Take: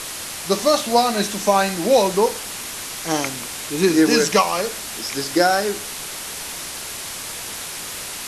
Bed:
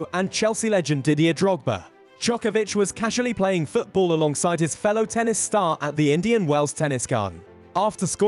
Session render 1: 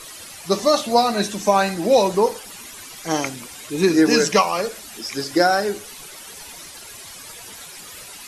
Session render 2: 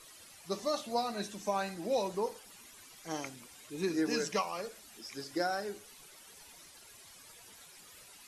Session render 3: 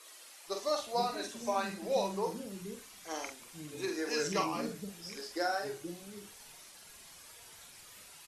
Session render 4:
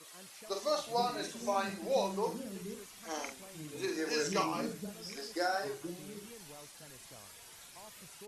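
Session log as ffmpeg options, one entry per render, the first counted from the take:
-af "afftdn=nr=12:nf=-31"
-af "volume=-16.5dB"
-filter_complex "[0:a]asplit=2[a][b];[b]adelay=46,volume=-5dB[c];[a][c]amix=inputs=2:normalize=0,acrossover=split=310[d][e];[d]adelay=480[f];[f][e]amix=inputs=2:normalize=0"
-filter_complex "[1:a]volume=-33.5dB[a];[0:a][a]amix=inputs=2:normalize=0"

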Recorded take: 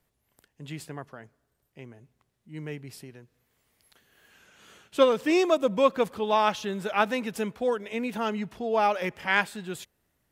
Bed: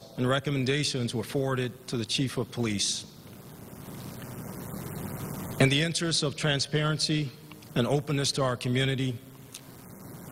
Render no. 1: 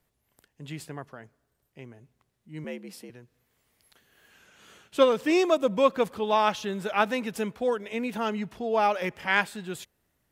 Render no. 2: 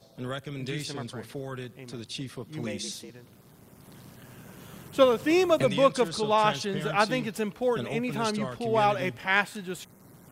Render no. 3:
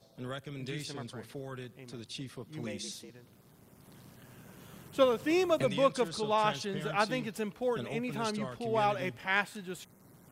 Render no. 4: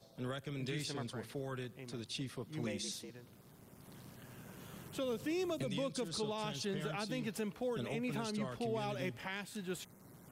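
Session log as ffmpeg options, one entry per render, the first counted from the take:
-filter_complex "[0:a]asettb=1/sr,asplit=3[a][b][c];[a]atrim=end=2.644[d];[b]atrim=start=2.64:end=3.1,asetpts=PTS-STARTPTS,afade=t=in:d=0.004:c=qsin,afade=t=out:st=0.456:d=0.004:c=qsin,afreqshift=73[e];[c]atrim=start=3.096[f];[d][e]acrossfade=d=0.004:c1=hsin:c2=qsin[g];[g][f]acrossfade=d=0.004:c1=qsin:c2=hsin"
-filter_complex "[1:a]volume=-8.5dB[a];[0:a][a]amix=inputs=2:normalize=0"
-af "volume=-5.5dB"
-filter_complex "[0:a]acrossover=split=430|3000[a][b][c];[b]acompressor=threshold=-39dB:ratio=6[d];[a][d][c]amix=inputs=3:normalize=0,alimiter=level_in=5.5dB:limit=-24dB:level=0:latency=1:release=144,volume=-5.5dB"

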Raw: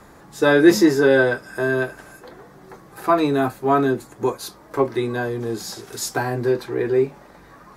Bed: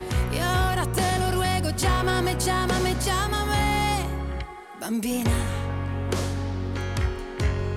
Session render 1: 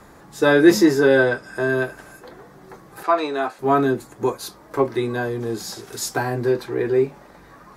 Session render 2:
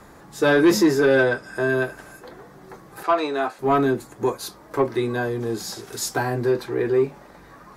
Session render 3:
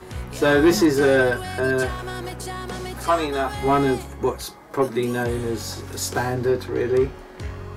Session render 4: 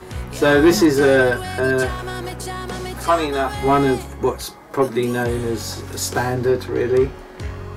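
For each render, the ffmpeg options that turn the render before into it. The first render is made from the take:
-filter_complex "[0:a]asettb=1/sr,asplit=3[a][b][c];[a]atrim=end=1.244[d];[b]atrim=start=1.24:end=1.69,asetpts=PTS-STARTPTS,afade=t=in:d=0.004:c=qsin,afade=t=out:st=0.446:d=0.004:c=qsin,lowpass=9.5k[e];[c]atrim=start=1.686[f];[d][e]acrossfade=d=0.004:c1=hsin:c2=qsin[g];[g][f]acrossfade=d=0.004:c1=qsin:c2=hsin,asettb=1/sr,asplit=3[h][i][j];[h]atrim=end=3.034[k];[i]atrim=start=3.03:end=3.59,asetpts=PTS-STARTPTS,afade=t=in:d=0.004:c=qsin,afade=t=out:st=0.556:d=0.004:c=qsin,highpass=480,lowpass=6.8k[l];[j]atrim=start=3.586[m];[k][l]acrossfade=d=0.004:c1=hsin:c2=qsin[n];[n][m]acrossfade=d=0.004:c1=qsin:c2=hsin"
-af "asoftclip=type=tanh:threshold=-9.5dB"
-filter_complex "[1:a]volume=-8dB[a];[0:a][a]amix=inputs=2:normalize=0"
-af "volume=3dB"

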